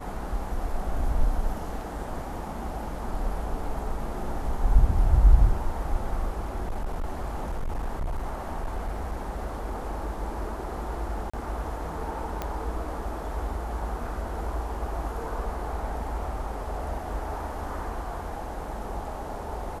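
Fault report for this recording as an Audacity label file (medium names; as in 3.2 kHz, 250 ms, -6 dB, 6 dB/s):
6.390000	9.960000	clipped -25.5 dBFS
11.300000	11.340000	dropout 35 ms
12.420000	12.420000	pop -16 dBFS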